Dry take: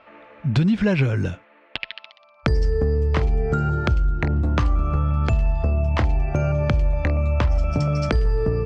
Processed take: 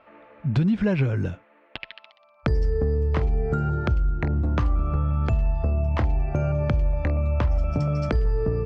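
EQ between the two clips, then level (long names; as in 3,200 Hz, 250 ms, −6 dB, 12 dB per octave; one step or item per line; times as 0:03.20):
high-shelf EQ 2,200 Hz −8 dB
−2.5 dB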